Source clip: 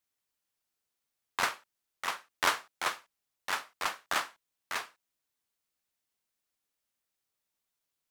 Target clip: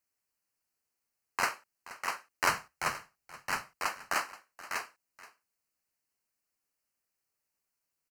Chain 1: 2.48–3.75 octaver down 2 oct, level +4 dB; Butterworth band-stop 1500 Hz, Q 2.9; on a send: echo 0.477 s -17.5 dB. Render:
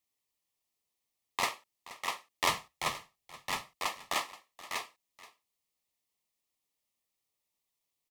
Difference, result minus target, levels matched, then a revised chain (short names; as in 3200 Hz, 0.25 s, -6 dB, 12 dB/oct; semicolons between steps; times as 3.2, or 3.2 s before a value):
4000 Hz band +5.0 dB
2.48–3.75 octaver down 2 oct, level +4 dB; Butterworth band-stop 3500 Hz, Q 2.9; on a send: echo 0.477 s -17.5 dB